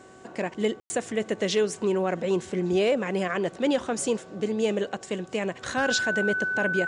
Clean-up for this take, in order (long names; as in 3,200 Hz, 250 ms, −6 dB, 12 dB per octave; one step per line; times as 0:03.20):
hum removal 377.4 Hz, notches 4
notch filter 1,500 Hz, Q 30
ambience match 0:00.80–0:00.90